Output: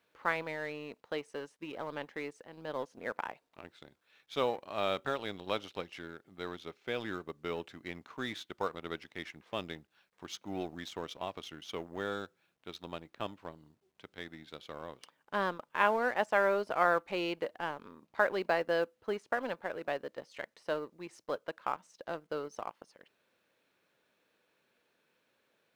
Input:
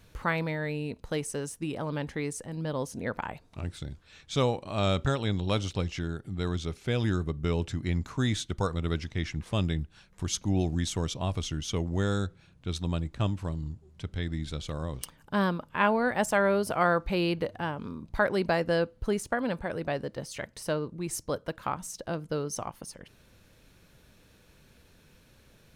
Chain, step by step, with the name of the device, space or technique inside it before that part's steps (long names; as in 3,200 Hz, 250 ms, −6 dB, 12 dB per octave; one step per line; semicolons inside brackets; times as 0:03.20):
phone line with mismatched companding (band-pass filter 390–3,400 Hz; mu-law and A-law mismatch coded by A)
level −1.5 dB